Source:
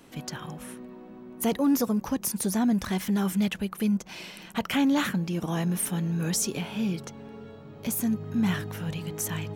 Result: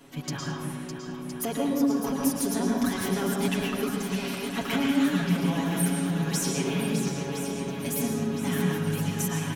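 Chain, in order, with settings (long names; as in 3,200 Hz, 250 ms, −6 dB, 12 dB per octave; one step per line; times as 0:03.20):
comb filter 7.2 ms, depth 96%
downward compressor 4 to 1, threshold −26 dBFS, peak gain reduction 10.5 dB
feedback echo with a long and a short gap by turns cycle 1,014 ms, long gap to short 1.5 to 1, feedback 62%, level −8.5 dB
convolution reverb RT60 0.85 s, pre-delay 103 ms, DRR −1 dB
level −2 dB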